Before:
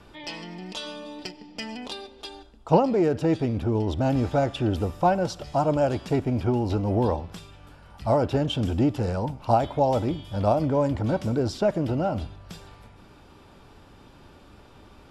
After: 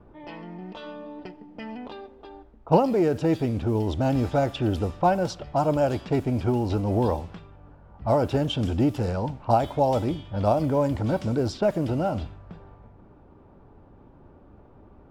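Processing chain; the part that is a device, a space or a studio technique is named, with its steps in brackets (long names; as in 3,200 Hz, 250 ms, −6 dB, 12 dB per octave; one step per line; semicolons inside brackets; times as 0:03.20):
cassette deck with a dynamic noise filter (white noise bed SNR 32 dB; low-pass that shuts in the quiet parts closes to 740 Hz, open at −20 dBFS)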